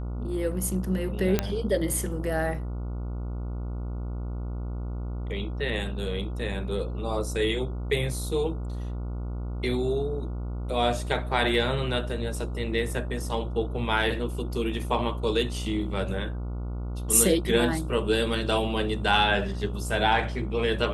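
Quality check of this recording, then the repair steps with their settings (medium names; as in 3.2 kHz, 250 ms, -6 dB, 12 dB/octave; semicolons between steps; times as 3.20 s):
buzz 60 Hz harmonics 24 -32 dBFS
1.39 s: pop -8 dBFS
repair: de-click; de-hum 60 Hz, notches 24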